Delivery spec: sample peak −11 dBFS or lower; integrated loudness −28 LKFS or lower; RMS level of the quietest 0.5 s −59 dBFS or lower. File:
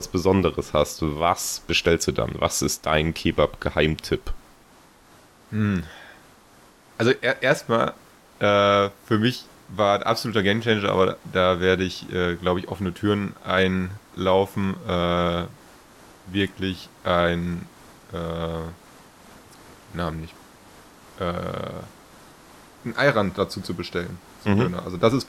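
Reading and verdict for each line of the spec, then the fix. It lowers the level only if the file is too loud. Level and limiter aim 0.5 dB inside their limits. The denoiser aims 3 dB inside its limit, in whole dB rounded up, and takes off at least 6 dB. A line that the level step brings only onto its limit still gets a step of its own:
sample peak −6.5 dBFS: out of spec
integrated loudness −23.5 LKFS: out of spec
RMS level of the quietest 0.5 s −53 dBFS: out of spec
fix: broadband denoise 6 dB, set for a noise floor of −53 dBFS
level −5 dB

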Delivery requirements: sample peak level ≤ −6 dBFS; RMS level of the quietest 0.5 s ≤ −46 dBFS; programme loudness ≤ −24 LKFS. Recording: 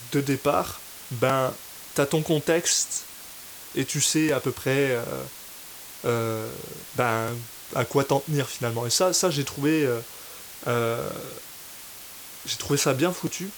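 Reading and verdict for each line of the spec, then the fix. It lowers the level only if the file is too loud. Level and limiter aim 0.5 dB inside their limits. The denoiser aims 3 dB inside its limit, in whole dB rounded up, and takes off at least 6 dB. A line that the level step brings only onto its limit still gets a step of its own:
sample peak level −7.0 dBFS: in spec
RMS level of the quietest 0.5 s −42 dBFS: out of spec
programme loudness −25.5 LKFS: in spec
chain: broadband denoise 7 dB, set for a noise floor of −42 dBFS

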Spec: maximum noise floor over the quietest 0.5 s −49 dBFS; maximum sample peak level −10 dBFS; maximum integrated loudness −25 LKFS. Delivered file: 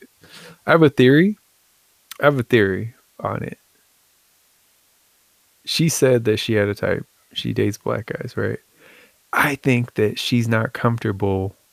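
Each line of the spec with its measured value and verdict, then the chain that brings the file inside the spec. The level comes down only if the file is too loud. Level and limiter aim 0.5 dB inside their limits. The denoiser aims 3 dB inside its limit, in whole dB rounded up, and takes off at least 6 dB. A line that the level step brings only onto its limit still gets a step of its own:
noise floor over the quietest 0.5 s −60 dBFS: in spec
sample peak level −2.5 dBFS: out of spec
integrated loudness −19.5 LKFS: out of spec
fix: level −6 dB
brickwall limiter −10.5 dBFS

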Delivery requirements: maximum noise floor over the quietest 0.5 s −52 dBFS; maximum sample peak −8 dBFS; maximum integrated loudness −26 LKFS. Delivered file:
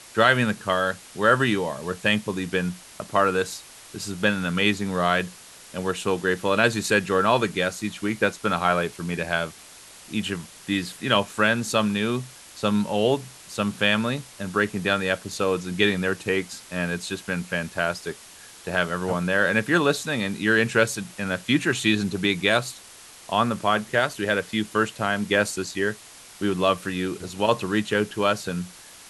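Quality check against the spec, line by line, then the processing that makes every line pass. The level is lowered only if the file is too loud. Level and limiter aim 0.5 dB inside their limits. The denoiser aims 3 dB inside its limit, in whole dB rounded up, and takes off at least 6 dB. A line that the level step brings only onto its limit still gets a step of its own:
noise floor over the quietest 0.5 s −46 dBFS: out of spec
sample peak −3.0 dBFS: out of spec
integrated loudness −24.0 LKFS: out of spec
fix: broadband denoise 7 dB, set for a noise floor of −46 dBFS
level −2.5 dB
brickwall limiter −8.5 dBFS

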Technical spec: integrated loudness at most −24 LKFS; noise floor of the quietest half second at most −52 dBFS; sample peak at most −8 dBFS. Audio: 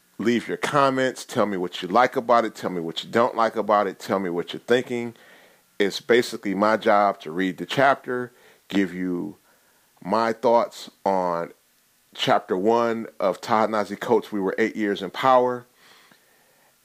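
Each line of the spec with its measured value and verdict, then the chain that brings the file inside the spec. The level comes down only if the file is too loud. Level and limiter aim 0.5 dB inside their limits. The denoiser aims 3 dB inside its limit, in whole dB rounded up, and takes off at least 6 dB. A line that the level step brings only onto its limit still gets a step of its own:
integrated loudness −23.0 LKFS: out of spec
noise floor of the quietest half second −62 dBFS: in spec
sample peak −5.5 dBFS: out of spec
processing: level −1.5 dB
brickwall limiter −8.5 dBFS

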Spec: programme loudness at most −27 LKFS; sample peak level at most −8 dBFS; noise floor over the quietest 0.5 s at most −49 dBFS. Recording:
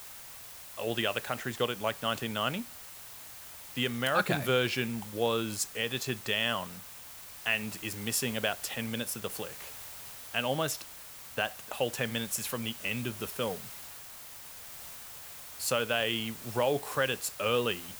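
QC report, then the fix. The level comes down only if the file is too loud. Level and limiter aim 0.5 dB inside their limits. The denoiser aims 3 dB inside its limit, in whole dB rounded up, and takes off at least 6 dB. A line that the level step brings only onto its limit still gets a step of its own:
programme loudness −32.0 LKFS: in spec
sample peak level −13.0 dBFS: in spec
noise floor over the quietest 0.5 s −47 dBFS: out of spec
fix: broadband denoise 6 dB, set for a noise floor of −47 dBFS

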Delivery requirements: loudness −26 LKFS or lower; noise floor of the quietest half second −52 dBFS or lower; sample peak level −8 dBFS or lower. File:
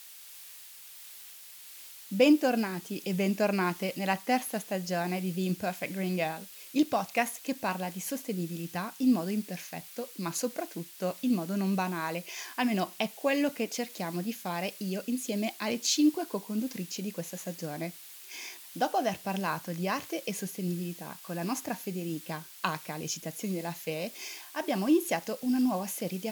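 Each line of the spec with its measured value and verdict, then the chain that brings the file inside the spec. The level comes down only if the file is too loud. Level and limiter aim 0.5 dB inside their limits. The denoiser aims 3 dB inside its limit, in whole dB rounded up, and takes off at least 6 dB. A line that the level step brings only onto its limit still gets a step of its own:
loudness −31.5 LKFS: in spec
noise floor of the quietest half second −49 dBFS: out of spec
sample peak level −10.5 dBFS: in spec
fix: broadband denoise 6 dB, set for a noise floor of −49 dBFS

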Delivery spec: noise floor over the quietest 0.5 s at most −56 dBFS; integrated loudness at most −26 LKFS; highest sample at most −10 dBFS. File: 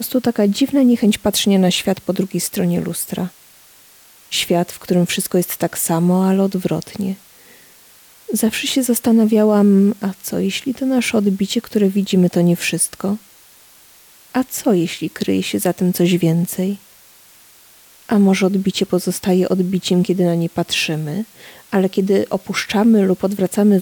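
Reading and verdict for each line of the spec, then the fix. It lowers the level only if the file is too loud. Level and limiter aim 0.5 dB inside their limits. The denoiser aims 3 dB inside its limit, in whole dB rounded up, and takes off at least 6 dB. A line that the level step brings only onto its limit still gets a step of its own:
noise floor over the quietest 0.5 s −47 dBFS: out of spec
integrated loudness −17.0 LKFS: out of spec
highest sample −6.0 dBFS: out of spec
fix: level −9.5 dB

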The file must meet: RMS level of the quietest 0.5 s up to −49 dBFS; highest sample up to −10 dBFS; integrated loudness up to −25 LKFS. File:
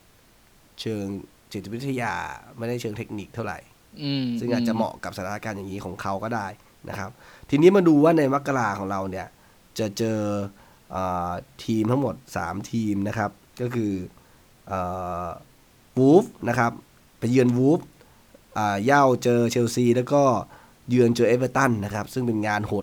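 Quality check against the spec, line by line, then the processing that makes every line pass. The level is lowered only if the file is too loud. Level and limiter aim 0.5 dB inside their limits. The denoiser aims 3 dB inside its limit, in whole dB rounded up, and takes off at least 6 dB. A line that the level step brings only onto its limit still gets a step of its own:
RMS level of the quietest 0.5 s −56 dBFS: in spec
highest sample −4.0 dBFS: out of spec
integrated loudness −24.0 LKFS: out of spec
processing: level −1.5 dB
brickwall limiter −10.5 dBFS

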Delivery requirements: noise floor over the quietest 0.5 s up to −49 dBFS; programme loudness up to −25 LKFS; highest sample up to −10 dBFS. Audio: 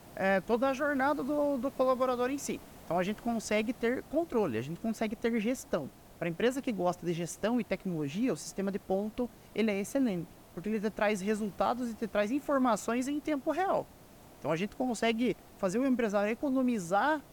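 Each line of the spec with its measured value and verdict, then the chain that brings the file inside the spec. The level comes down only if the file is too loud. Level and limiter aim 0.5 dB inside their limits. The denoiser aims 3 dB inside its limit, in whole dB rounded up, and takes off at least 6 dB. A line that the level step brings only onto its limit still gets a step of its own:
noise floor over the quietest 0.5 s −55 dBFS: in spec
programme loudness −32.0 LKFS: in spec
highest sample −17.5 dBFS: in spec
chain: no processing needed

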